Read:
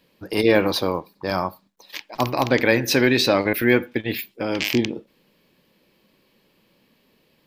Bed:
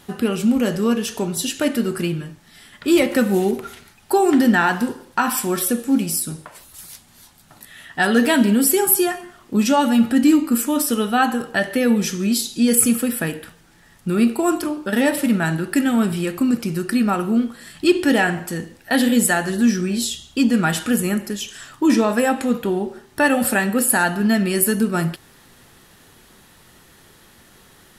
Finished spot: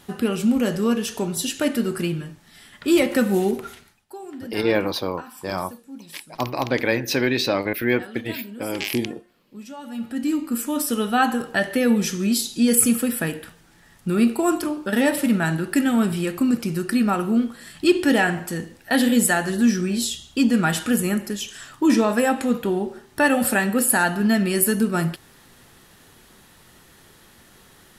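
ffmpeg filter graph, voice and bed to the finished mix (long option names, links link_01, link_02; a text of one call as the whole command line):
ffmpeg -i stem1.wav -i stem2.wav -filter_complex "[0:a]adelay=4200,volume=-3.5dB[link_01];[1:a]volume=18dB,afade=type=out:start_time=3.69:duration=0.37:silence=0.105925,afade=type=in:start_time=9.81:duration=1.4:silence=0.1[link_02];[link_01][link_02]amix=inputs=2:normalize=0" out.wav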